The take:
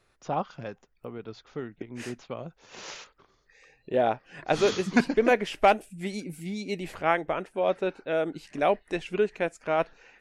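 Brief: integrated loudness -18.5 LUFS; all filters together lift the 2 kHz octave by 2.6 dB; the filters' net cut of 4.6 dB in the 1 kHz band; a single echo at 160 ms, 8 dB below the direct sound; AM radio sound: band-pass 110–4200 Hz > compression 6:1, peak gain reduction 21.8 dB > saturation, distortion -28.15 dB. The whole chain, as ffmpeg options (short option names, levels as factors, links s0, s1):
-af "highpass=110,lowpass=4200,equalizer=f=1000:t=o:g=-8.5,equalizer=f=2000:t=o:g=6.5,aecho=1:1:160:0.398,acompressor=threshold=0.0112:ratio=6,asoftclip=threshold=0.0531,volume=17.8"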